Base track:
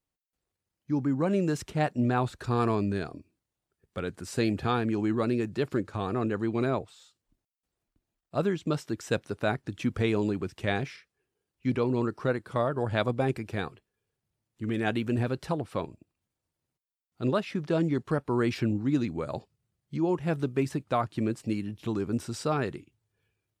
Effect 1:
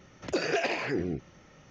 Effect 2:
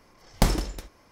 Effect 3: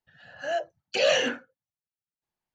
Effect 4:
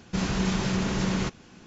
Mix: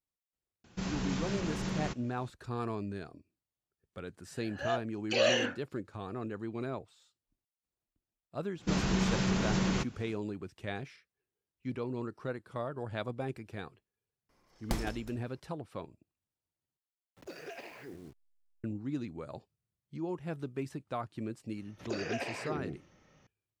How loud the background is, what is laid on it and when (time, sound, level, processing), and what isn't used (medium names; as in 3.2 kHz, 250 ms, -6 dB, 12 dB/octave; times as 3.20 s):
base track -10 dB
0.64 s: add 4 -9 dB
4.17 s: add 3 -5 dB
8.54 s: add 4 -3.5 dB, fades 0.10 s
14.29 s: add 2 -13 dB
16.94 s: replace with 1 -17 dB + send-on-delta sampling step -40 dBFS
21.57 s: add 1 -8.5 dB + band-stop 1.4 kHz, Q 28